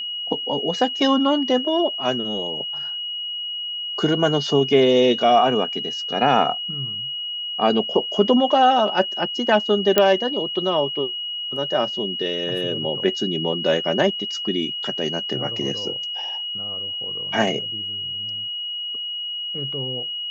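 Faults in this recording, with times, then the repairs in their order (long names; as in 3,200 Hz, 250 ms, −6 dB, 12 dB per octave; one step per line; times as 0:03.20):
whistle 2,900 Hz −26 dBFS
0:09.98: click −1 dBFS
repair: click removal
notch filter 2,900 Hz, Q 30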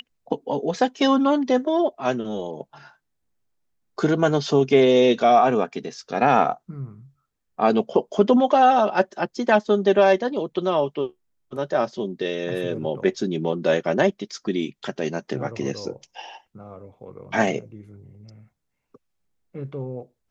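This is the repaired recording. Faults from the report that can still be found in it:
none of them is left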